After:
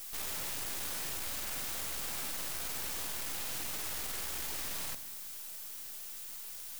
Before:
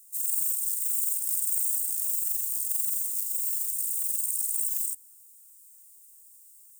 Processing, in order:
low-pass filter 9,000 Hz 24 dB per octave
tilt shelving filter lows +6 dB, about 1,500 Hz
full-wave rectification
background noise blue −53 dBFS
wrap-around overflow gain 41.5 dB
on a send: convolution reverb RT60 1.4 s, pre-delay 3 ms, DRR 13 dB
on the sum: level +8 dB

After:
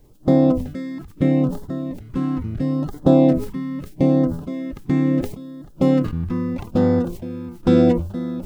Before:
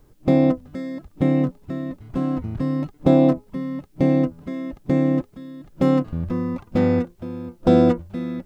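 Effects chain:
auto-filter notch sine 0.76 Hz 560–2,500 Hz
level that may fall only so fast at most 92 dB per second
level +1.5 dB

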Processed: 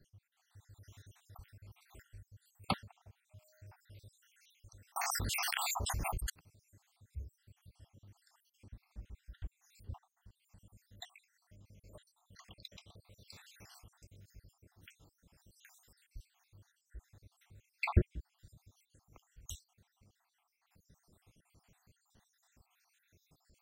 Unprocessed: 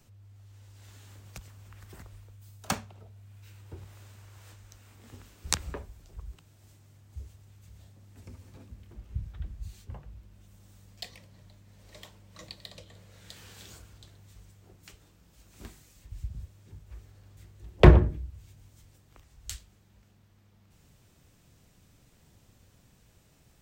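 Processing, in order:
time-frequency cells dropped at random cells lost 71%
0:03.30–0:03.72: steady tone 620 Hz −67 dBFS
0:04.96–0:06.30: envelope flattener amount 100%
level −2.5 dB

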